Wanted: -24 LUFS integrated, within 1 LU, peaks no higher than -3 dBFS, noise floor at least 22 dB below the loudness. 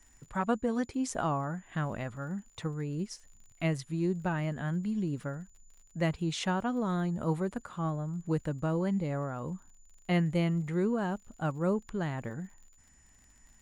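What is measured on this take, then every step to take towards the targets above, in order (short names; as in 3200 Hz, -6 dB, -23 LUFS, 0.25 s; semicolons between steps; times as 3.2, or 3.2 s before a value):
ticks 48/s; steady tone 7000 Hz; tone level -63 dBFS; loudness -33.0 LUFS; peak -16.0 dBFS; loudness target -24.0 LUFS
-> de-click; notch 7000 Hz, Q 30; gain +9 dB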